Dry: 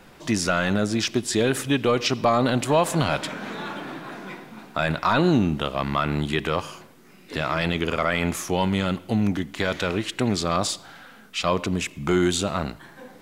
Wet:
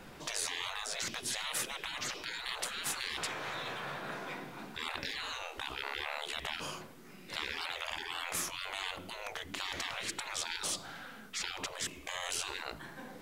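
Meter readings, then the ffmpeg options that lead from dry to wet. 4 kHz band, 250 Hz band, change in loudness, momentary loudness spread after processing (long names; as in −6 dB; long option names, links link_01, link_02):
−7.0 dB, −27.0 dB, −13.5 dB, 7 LU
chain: -af "afftfilt=real='re*lt(hypot(re,im),0.0631)':imag='im*lt(hypot(re,im),0.0631)':win_size=1024:overlap=0.75,volume=-2dB"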